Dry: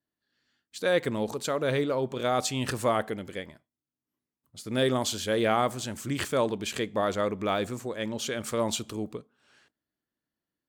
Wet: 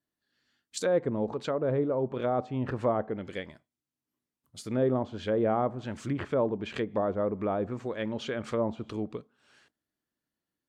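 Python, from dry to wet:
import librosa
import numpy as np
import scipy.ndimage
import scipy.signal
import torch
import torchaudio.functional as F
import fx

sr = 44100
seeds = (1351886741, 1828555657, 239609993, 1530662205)

y = fx.env_lowpass_down(x, sr, base_hz=850.0, full_db=-25.0)
y = fx.peak_eq(y, sr, hz=7400.0, db=13.0, octaves=1.1, at=(0.77, 1.29))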